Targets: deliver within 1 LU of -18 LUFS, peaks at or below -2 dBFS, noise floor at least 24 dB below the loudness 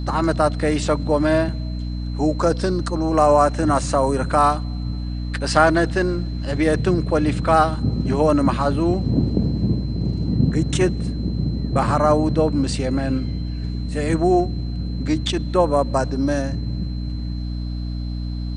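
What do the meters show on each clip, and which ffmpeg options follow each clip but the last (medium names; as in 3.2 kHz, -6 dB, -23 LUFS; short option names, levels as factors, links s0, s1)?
hum 60 Hz; highest harmonic 300 Hz; hum level -24 dBFS; steady tone 4.1 kHz; tone level -44 dBFS; loudness -20.5 LUFS; peak level -2.0 dBFS; loudness target -18.0 LUFS
-> -af "bandreject=f=60:t=h:w=4,bandreject=f=120:t=h:w=4,bandreject=f=180:t=h:w=4,bandreject=f=240:t=h:w=4,bandreject=f=300:t=h:w=4"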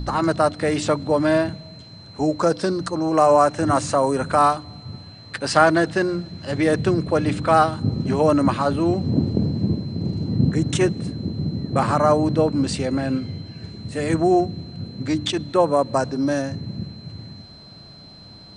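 hum not found; steady tone 4.1 kHz; tone level -44 dBFS
-> -af "bandreject=f=4100:w=30"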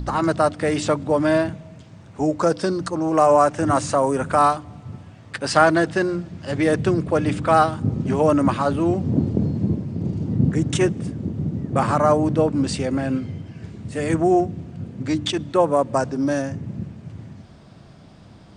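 steady tone not found; loudness -21.0 LUFS; peak level -1.5 dBFS; loudness target -18.0 LUFS
-> -af "volume=1.41,alimiter=limit=0.794:level=0:latency=1"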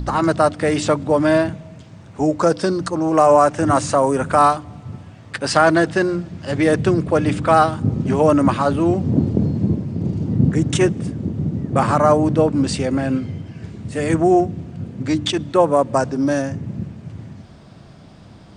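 loudness -18.0 LUFS; peak level -2.0 dBFS; noise floor -43 dBFS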